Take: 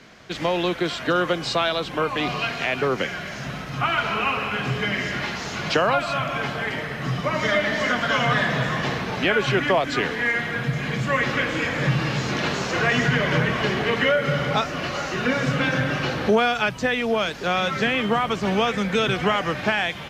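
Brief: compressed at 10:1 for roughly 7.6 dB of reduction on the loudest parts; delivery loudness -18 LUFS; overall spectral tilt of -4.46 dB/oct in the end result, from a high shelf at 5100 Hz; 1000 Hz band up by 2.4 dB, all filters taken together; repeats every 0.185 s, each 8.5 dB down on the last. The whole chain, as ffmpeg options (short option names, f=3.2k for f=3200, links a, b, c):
-af "equalizer=f=1k:t=o:g=3,highshelf=f=5.1k:g=5,acompressor=threshold=-22dB:ratio=10,aecho=1:1:185|370|555|740:0.376|0.143|0.0543|0.0206,volume=7.5dB"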